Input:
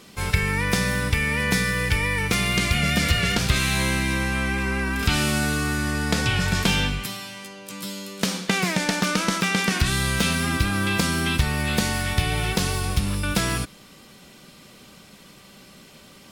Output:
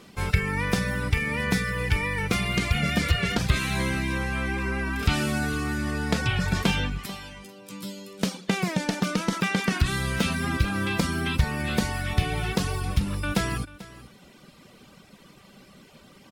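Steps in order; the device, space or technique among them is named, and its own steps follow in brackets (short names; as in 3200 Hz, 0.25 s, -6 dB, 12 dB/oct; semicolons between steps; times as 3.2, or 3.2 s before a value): reverb removal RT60 0.77 s; 7.38–9.33 bell 1500 Hz -4.5 dB 1.6 oct; behind a face mask (high shelf 2900 Hz -7.5 dB); echo 0.44 s -18 dB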